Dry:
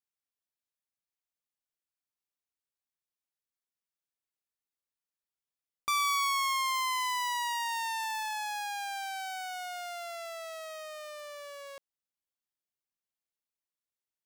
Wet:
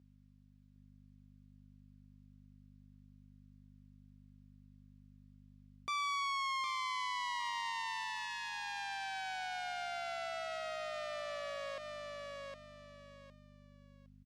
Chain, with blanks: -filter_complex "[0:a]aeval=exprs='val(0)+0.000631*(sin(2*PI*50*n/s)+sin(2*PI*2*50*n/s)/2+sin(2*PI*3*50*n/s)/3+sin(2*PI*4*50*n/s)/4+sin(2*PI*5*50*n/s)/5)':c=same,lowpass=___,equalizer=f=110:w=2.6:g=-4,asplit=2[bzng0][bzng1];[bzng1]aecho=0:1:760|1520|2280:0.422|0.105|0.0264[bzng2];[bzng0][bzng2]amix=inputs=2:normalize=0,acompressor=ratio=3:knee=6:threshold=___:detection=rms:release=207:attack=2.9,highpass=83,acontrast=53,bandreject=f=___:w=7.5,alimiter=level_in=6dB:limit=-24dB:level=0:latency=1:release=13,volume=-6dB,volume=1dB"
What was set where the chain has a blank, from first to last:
4.9k, -46dB, 850